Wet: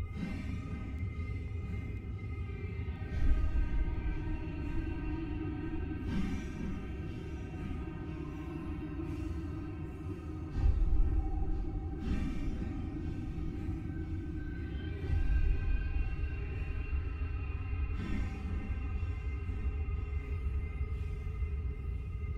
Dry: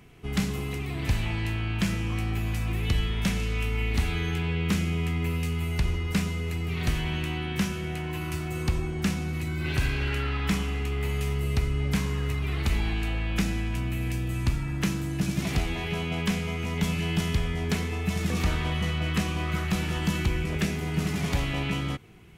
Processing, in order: RIAA curve playback; vocal rider within 3 dB 0.5 s; resonator bank C4 minor, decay 0.24 s; Paulstretch 4.1×, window 0.05 s, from 6.1; echo with dull and thin repeats by turns 0.493 s, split 2400 Hz, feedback 79%, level -6.5 dB

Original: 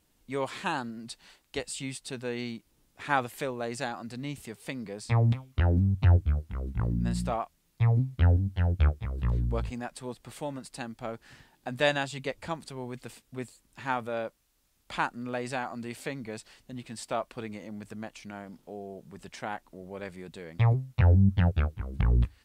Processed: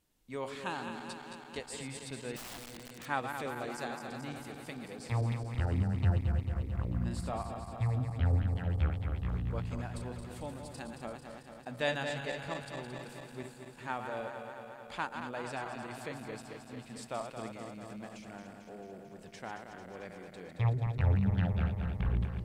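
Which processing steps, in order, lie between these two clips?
regenerating reverse delay 0.111 s, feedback 84%, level -7 dB; 2.36–3.06 wrapped overs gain 32.5 dB; gain -7.5 dB

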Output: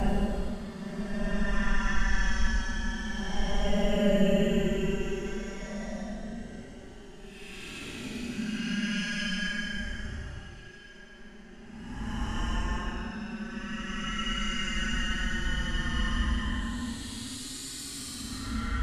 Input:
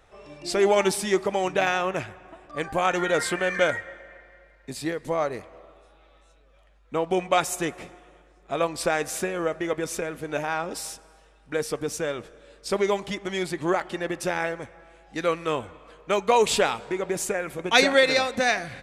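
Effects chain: thin delay 61 ms, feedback 66%, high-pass 1700 Hz, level -20.5 dB; Paulstretch 24×, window 0.05 s, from 12.75; frequency shift -410 Hz; gain -2.5 dB

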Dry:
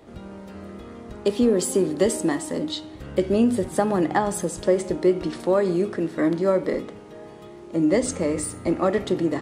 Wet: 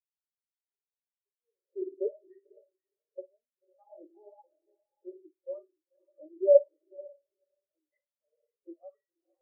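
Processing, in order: HPF 180 Hz 6 dB/oct; bell 250 Hz -5.5 dB 1.2 oct; in parallel at 0 dB: limiter -17.5 dBFS, peak gain reduction 9.5 dB; on the sum: spring tank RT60 1.1 s, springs 53 ms, DRR 4 dB; wah 0.9 Hz 400–2200 Hz, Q 2.1; on a send: diffused feedback echo 0.502 s, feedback 42%, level -5 dB; on the sum: spectral expander 4:1

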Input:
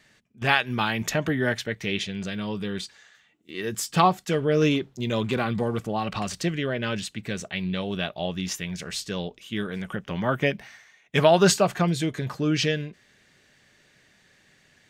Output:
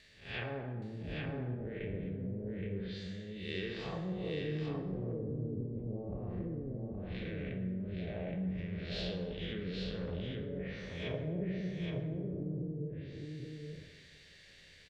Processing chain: time blur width 0.248 s; passive tone stack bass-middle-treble 10-0-1; treble ducked by the level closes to 650 Hz, closed at -44 dBFS; notch 6400 Hz, Q 24; treble ducked by the level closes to 310 Hz, closed at -42.5 dBFS; compressor 2:1, threshold -55 dBFS, peak gain reduction 8.5 dB; graphic EQ 125/250/500/1000/2000/4000 Hz -6/-5/+11/+5/+8/+11 dB; on a send: echo 0.821 s -4 dB; on the sum: plate-style reverb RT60 1.4 s, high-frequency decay 0.55×, pre-delay 0 ms, DRR 4.5 dB; gain +15 dB

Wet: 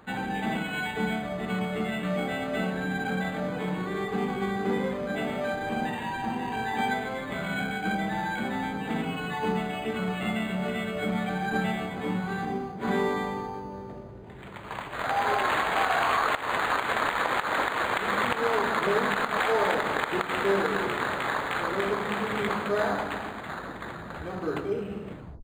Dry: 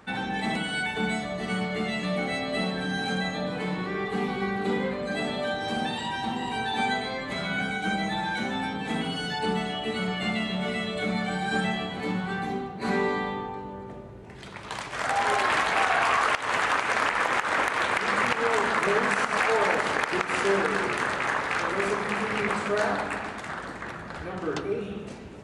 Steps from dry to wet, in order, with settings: tape stop at the end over 0.37 s; decimation joined by straight lines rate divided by 8×

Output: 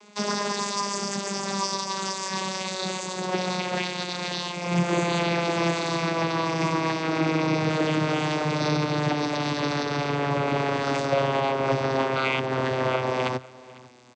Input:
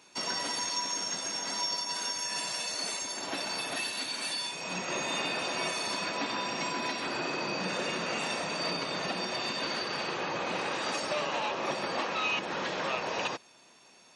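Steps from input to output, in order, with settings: vocoder on a gliding note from G#3, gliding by -9 st; echo 0.499 s -21.5 dB; gain +8.5 dB

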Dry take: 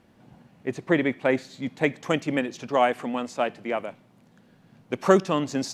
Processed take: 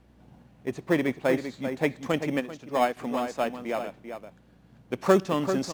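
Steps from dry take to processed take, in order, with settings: hum 60 Hz, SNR 31 dB; outdoor echo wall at 67 m, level -8 dB; in parallel at -11.5 dB: sample-and-hold 15×; 2.4–2.97 on the sum: upward expander 1.5:1, over -30 dBFS; gain -4 dB

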